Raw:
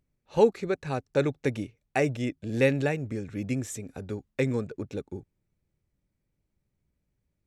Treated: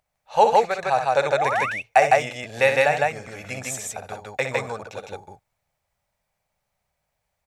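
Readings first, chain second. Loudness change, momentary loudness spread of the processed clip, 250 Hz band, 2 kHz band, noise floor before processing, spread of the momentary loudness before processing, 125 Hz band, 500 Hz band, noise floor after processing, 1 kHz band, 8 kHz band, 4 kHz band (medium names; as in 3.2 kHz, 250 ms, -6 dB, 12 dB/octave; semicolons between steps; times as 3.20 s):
+7.5 dB, 17 LU, -9.0 dB, +11.5 dB, -80 dBFS, 14 LU, -5.5 dB, +5.5 dB, -79 dBFS, +17.5 dB, +10.0 dB, +10.0 dB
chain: painted sound rise, 1.19–1.66 s, 230–2800 Hz -36 dBFS; resonant low shelf 480 Hz -14 dB, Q 3; loudspeakers at several distances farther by 21 m -8 dB, 54 m -1 dB; trim +7 dB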